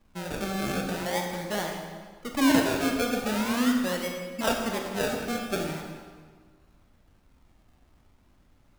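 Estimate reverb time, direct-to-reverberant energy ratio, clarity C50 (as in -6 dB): 1.6 s, 1.5 dB, 3.5 dB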